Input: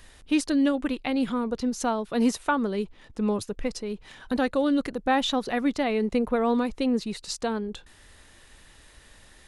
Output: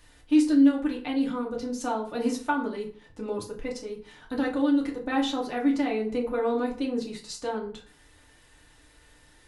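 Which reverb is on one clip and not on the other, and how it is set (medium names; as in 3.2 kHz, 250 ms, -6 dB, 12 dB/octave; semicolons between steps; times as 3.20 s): FDN reverb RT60 0.45 s, low-frequency decay 1×, high-frequency decay 0.65×, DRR -2.5 dB; trim -8 dB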